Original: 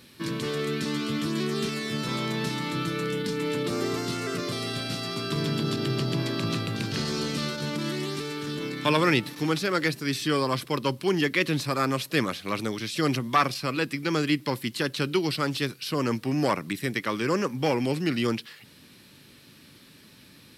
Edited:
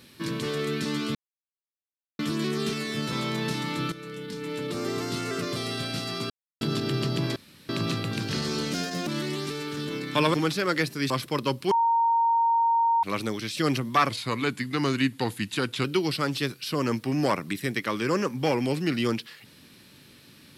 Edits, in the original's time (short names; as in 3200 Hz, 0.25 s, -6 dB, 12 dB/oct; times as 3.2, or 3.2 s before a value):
1.15 insert silence 1.04 s
2.88–4.17 fade in, from -13 dB
5.26–5.57 mute
6.32 insert room tone 0.33 s
7.36–7.77 speed 120%
9.04–9.4 cut
10.16–10.49 cut
11.1–12.42 bleep 924 Hz -19 dBFS
13.48–15.04 speed 89%